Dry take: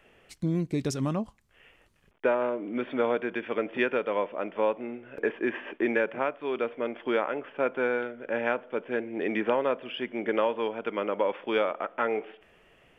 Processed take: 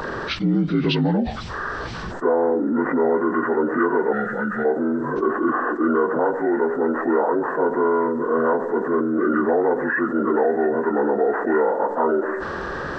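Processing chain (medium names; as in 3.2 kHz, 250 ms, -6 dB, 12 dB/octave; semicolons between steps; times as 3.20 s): frequency axis rescaled in octaves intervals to 78%; time-frequency box 4.13–4.65 s, 230–1200 Hz -18 dB; level flattener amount 70%; trim +6 dB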